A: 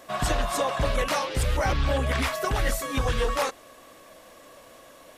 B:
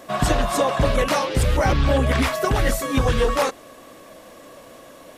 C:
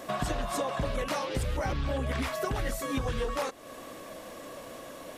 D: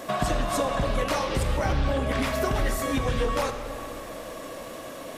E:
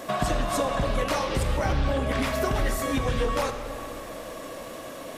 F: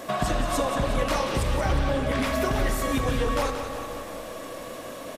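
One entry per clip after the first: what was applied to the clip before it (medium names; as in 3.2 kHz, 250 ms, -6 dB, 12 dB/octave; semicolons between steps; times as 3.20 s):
peaking EQ 220 Hz +6 dB 2.7 oct; trim +3.5 dB
compression 3:1, threshold -32 dBFS, peak gain reduction 13 dB
algorithmic reverb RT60 2.8 s, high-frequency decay 0.65×, pre-delay 0 ms, DRR 6 dB; trim +4.5 dB
no audible change
feedback delay 180 ms, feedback 56%, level -9 dB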